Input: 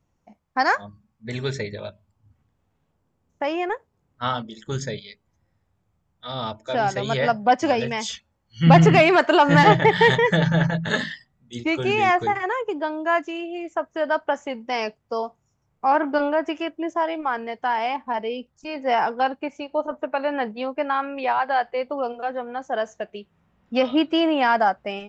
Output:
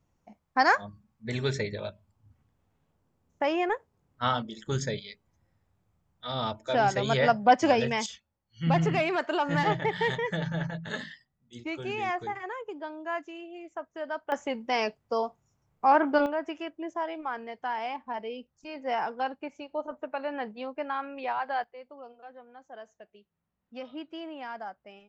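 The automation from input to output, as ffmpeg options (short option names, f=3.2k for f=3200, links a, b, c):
-af "asetnsamples=n=441:p=0,asendcmd='8.06 volume volume -12dB;14.32 volume volume -2dB;16.26 volume volume -9dB;21.64 volume volume -20dB',volume=-2dB"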